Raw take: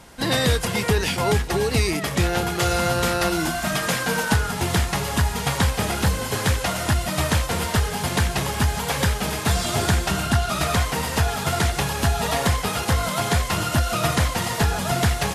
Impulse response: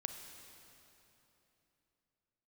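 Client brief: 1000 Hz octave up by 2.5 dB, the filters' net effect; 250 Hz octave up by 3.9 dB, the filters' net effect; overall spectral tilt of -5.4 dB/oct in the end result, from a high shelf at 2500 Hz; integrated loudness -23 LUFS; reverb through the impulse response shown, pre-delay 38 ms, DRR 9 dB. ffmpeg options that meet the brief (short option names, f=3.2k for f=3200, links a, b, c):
-filter_complex "[0:a]equalizer=f=250:t=o:g=5.5,equalizer=f=1k:t=o:g=4.5,highshelf=f=2.5k:g=-8,asplit=2[a][b];[1:a]atrim=start_sample=2205,adelay=38[c];[b][c]afir=irnorm=-1:irlink=0,volume=-7.5dB[d];[a][d]amix=inputs=2:normalize=0,volume=-2dB"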